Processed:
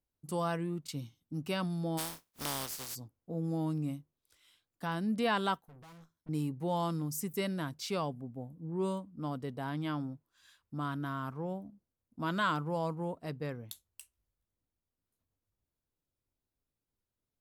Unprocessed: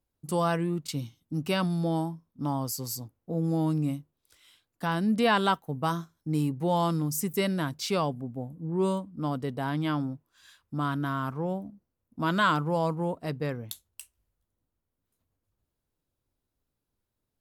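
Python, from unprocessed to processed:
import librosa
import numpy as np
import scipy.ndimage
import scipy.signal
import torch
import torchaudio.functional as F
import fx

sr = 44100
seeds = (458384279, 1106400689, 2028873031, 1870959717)

y = fx.spec_flatten(x, sr, power=0.28, at=(1.97, 2.94), fade=0.02)
y = fx.tube_stage(y, sr, drive_db=46.0, bias=0.75, at=(5.61, 6.29))
y = y * 10.0 ** (-7.0 / 20.0)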